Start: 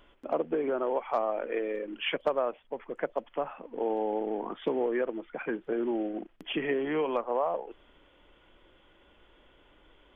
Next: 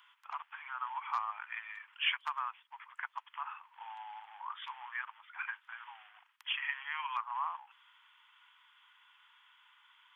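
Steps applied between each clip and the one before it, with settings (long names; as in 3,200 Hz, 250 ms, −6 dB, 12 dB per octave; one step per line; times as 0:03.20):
Butterworth high-pass 920 Hz 72 dB per octave
level +1 dB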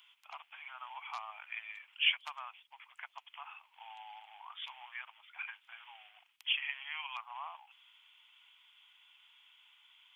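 flat-topped bell 1,300 Hz −13 dB 1.3 octaves
level +4 dB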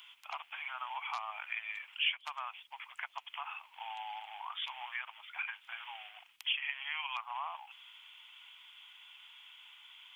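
downward compressor 2 to 1, threshold −46 dBFS, peak gain reduction 12.5 dB
level +8 dB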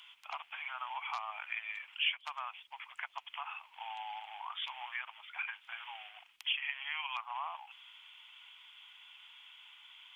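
high-shelf EQ 10,000 Hz −7.5 dB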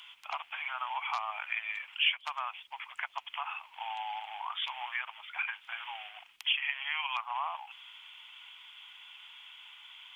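low-shelf EQ 480 Hz +3 dB
level +4.5 dB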